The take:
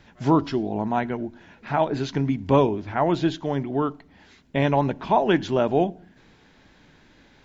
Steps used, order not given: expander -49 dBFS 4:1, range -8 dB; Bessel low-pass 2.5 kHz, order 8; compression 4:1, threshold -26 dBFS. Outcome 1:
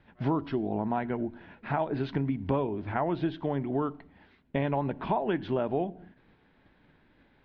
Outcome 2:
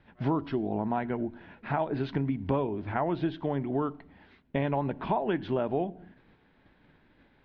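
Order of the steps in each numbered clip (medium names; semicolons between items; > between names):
compression > Bessel low-pass > expander; expander > compression > Bessel low-pass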